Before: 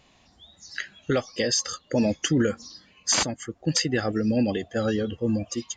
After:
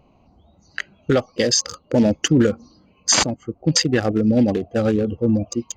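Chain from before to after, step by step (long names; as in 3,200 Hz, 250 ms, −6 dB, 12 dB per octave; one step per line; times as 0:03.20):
adaptive Wiener filter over 25 samples
level +7 dB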